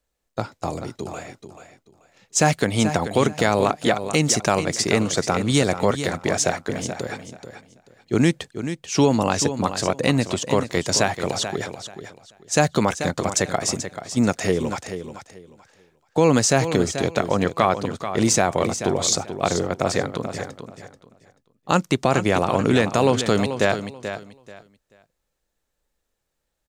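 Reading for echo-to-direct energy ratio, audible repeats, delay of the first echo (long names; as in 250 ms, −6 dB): −10.0 dB, 2, 435 ms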